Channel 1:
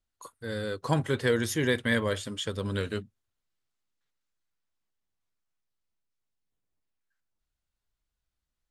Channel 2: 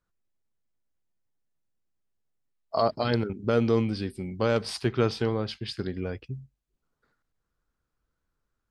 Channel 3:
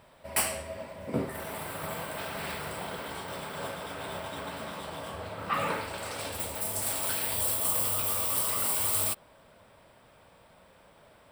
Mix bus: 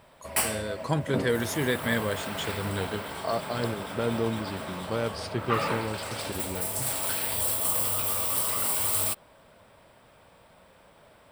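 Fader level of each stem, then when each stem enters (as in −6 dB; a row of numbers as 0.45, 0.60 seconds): −1.0, −5.0, +1.5 decibels; 0.00, 0.50, 0.00 seconds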